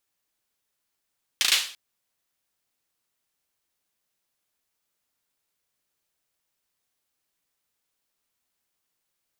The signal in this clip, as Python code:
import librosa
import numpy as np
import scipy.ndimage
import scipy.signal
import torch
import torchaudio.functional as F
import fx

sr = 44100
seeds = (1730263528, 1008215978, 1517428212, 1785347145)

y = fx.drum_clap(sr, seeds[0], length_s=0.34, bursts=4, spacing_ms=36, hz=3300.0, decay_s=0.43)